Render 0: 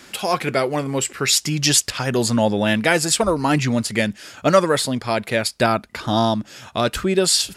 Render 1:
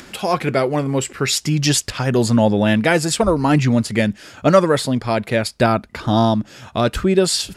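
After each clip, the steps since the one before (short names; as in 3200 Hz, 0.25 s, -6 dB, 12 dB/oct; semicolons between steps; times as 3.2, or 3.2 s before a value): tilt -1.5 dB/oct; upward compressor, threshold -37 dBFS; gain +1 dB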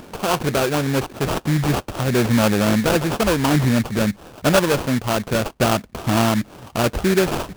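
high shelf 8100 Hz -7.5 dB; in parallel at -1 dB: limiter -12.5 dBFS, peak gain reduction 11 dB; on the sum: sample-rate reducer 2000 Hz, jitter 20%; gain -5.5 dB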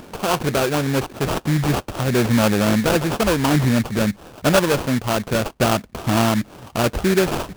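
nothing audible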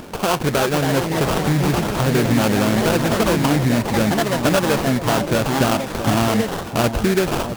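echoes that change speed 0.364 s, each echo +3 st, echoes 3, each echo -6 dB; compressor 2.5:1, threshold -20 dBFS, peak gain reduction 7 dB; echo with dull and thin repeats by turns 0.662 s, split 1000 Hz, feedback 50%, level -9.5 dB; gain +4 dB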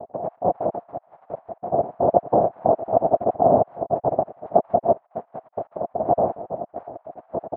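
random spectral dropouts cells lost 72%; noise vocoder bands 2; ladder low-pass 730 Hz, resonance 75%; gain +6 dB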